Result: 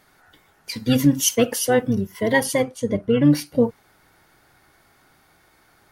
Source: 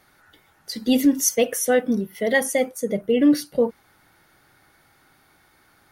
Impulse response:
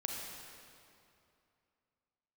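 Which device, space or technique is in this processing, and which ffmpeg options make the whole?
octave pedal: -filter_complex "[0:a]asettb=1/sr,asplit=3[a][b][c];[a]atrim=end=2.624[d];[b]atrim=start=2.62:end=3.25,asetpts=PTS-STARTPTS,afade=t=in:d=0.004:c=qsin,afade=t=out:st=0.626:d=0.004:c=qsin,lowpass=7.5k[e];[c]atrim=start=3.246[f];[d][e]acrossfade=d=0.004:c1=hsin:c2=qsin[g];[g][f]acrossfade=d=0.004:c1=qsin:c2=hsin,asplit=2[h][i];[i]asetrate=22050,aresample=44100,atempo=2,volume=-6dB[j];[h][j]amix=inputs=2:normalize=0"

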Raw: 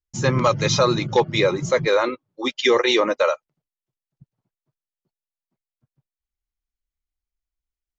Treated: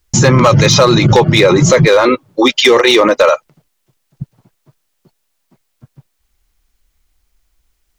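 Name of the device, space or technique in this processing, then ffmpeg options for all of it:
loud club master: -af "acompressor=threshold=-22dB:ratio=2,asoftclip=type=hard:threshold=-16dB,alimiter=level_in=27dB:limit=-1dB:release=50:level=0:latency=1,volume=-1dB"

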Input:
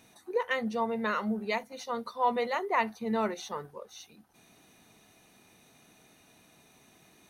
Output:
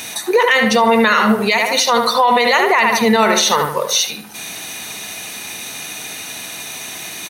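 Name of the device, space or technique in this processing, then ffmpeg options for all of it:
mastering chain: -filter_complex "[0:a]asettb=1/sr,asplit=3[a][b][c];[a]atrim=end=3.494[d];[b]atrim=start=3.49:end=3.92,asetpts=PTS-STARTPTS,afade=t=in:d=0.004:c=qsin,afade=t=out:st=0.426:d=0.004:c=qsin,highshelf=f=12k:g=6[e];[c]atrim=start=3.916[f];[d][e]acrossfade=d=0.004:c1=hsin:c2=qsin[g];[g][f]acrossfade=d=0.004:c1=qsin:c2=hsin,highpass=52,equalizer=f=1.2k:t=o:w=0.51:g=-3,asplit=2[h][i];[i]adelay=75,lowpass=f=2.4k:p=1,volume=-7dB,asplit=2[j][k];[k]adelay=75,lowpass=f=2.4k:p=1,volume=0.4,asplit=2[l][m];[m]adelay=75,lowpass=f=2.4k:p=1,volume=0.4,asplit=2[n][o];[o]adelay=75,lowpass=f=2.4k:p=1,volume=0.4,asplit=2[p][q];[q]adelay=75,lowpass=f=2.4k:p=1,volume=0.4[r];[h][j][l][n][p][r]amix=inputs=6:normalize=0,acompressor=threshold=-35dB:ratio=1.5,tiltshelf=f=880:g=-8,asoftclip=type=hard:threshold=-19.5dB,alimiter=level_in=30.5dB:limit=-1dB:release=50:level=0:latency=1,volume=-3.5dB"

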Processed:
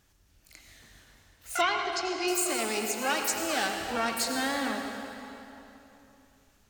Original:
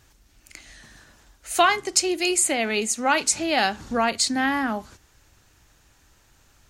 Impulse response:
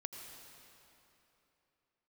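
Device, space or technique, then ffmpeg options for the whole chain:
shimmer-style reverb: -filter_complex "[0:a]asplit=2[a][b];[b]asetrate=88200,aresample=44100,atempo=0.5,volume=-5dB[c];[a][c]amix=inputs=2:normalize=0[d];[1:a]atrim=start_sample=2205[e];[d][e]afir=irnorm=-1:irlink=0,asettb=1/sr,asplit=3[f][g][h];[f]atrim=end=1.614[i];[g]atrim=start=1.61:end=2.28,asetpts=PTS-STARTPTS,afade=t=in:d=0.004:c=qsin,afade=t=out:st=0.666:d=0.004:c=qsin,lowpass=f=5.2k:w=0.5412,lowpass=f=5.2k:w=1.3066[j];[h]atrim=start=2.276[k];[i][j]acrossfade=d=0.004:c1=hsin:c2=qsin[l];[l][k]acrossfade=d=0.004:c1=qsin:c2=hsin,volume=-5.5dB"

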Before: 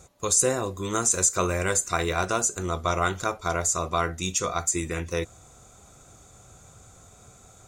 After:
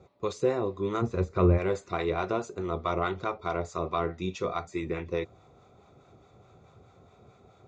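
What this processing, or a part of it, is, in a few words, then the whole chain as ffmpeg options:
guitar amplifier with harmonic tremolo: -filter_complex "[0:a]acrossover=split=700[a][b];[a]aeval=exprs='val(0)*(1-0.5/2+0.5/2*cos(2*PI*4.7*n/s))':c=same[c];[b]aeval=exprs='val(0)*(1-0.5/2-0.5/2*cos(2*PI*4.7*n/s))':c=same[d];[c][d]amix=inputs=2:normalize=0,asoftclip=type=tanh:threshold=-15.5dB,highpass=90,equalizer=f=390:t=q:w=4:g=6,equalizer=f=1.6k:t=q:w=4:g=-9,equalizer=f=3k:t=q:w=4:g=-8,lowpass=f=3.6k:w=0.5412,lowpass=f=3.6k:w=1.3066,asplit=3[e][f][g];[e]afade=t=out:st=1.01:d=0.02[h];[f]aemphasis=mode=reproduction:type=riaa,afade=t=in:st=1.01:d=0.02,afade=t=out:st=1.57:d=0.02[i];[g]afade=t=in:st=1.57:d=0.02[j];[h][i][j]amix=inputs=3:normalize=0"

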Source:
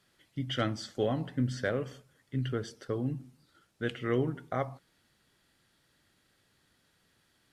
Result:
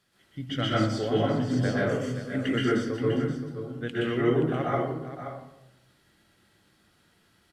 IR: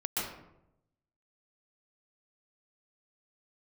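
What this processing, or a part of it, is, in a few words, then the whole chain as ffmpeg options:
bathroom: -filter_complex "[0:a]asettb=1/sr,asplit=3[a][b][c];[a]atrim=end=1.894[d];[b]atrim=start=1.89:end=2.65,asetpts=PTS-STARTPTS,afade=t=in:d=0.004:c=qsin,afade=t=out:st=0.756:d=0.004:c=qsin,equalizer=f=125:t=o:w=1:g=-6,equalizer=f=250:t=o:w=1:g=9,equalizer=f=2k:t=o:w=1:g=12,equalizer=f=8k:t=o:w=1:g=12[e];[c]atrim=start=2.646[f];[d][e]acrossfade=d=0.004:c1=hsin:c2=qsin[g];[g][f]acrossfade=d=0.004:c1=qsin:c2=hsin[h];[1:a]atrim=start_sample=2205[i];[h][i]afir=irnorm=-1:irlink=0,aecho=1:1:526:0.316"

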